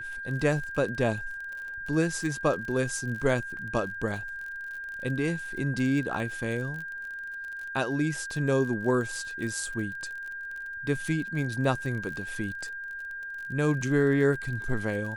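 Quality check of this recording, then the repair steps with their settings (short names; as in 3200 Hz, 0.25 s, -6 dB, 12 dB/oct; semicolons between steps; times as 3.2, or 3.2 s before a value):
crackle 38/s -36 dBFS
tone 1600 Hz -35 dBFS
3.57 gap 2.9 ms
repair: de-click; notch 1600 Hz, Q 30; interpolate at 3.57, 2.9 ms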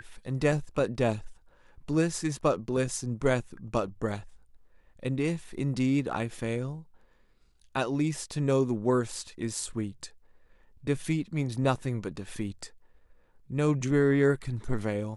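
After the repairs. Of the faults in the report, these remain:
none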